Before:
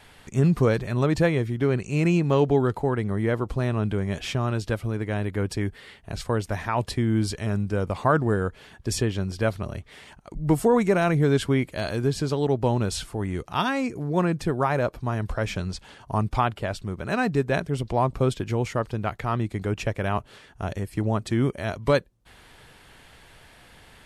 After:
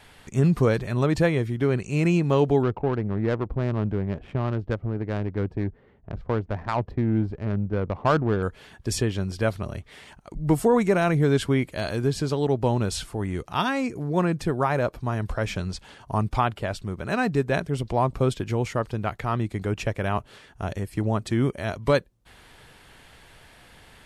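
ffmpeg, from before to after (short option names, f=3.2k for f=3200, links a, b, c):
-filter_complex "[0:a]asettb=1/sr,asplit=3[a][b][c];[a]atrim=end=2.634[d];[b]atrim=start=2.63:end=8.43,asetpts=PTS-STARTPTS,afade=t=in:d=0.004:c=qsin,afade=t=out:st=5.796:d=0.004:c=qsin,adynamicsmooth=sensitivity=1:basefreq=630[e];[c]atrim=start=8.426[f];[d][e]acrossfade=d=0.004:c1=hsin:c2=qsin[g];[g][f]acrossfade=d=0.004:c1=qsin:c2=hsin"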